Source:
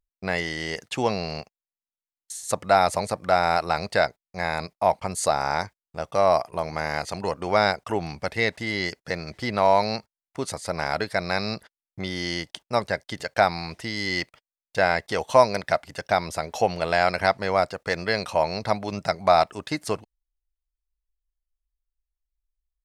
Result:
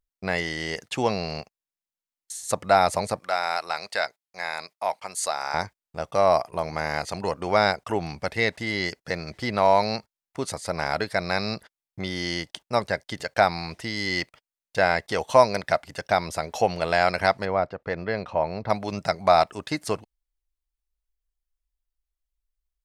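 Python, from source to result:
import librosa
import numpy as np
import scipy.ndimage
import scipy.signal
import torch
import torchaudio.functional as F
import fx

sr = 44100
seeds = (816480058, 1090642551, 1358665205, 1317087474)

y = fx.highpass(x, sr, hz=1300.0, slope=6, at=(3.19, 5.54))
y = fx.spacing_loss(y, sr, db_at_10k=32, at=(17.45, 18.7))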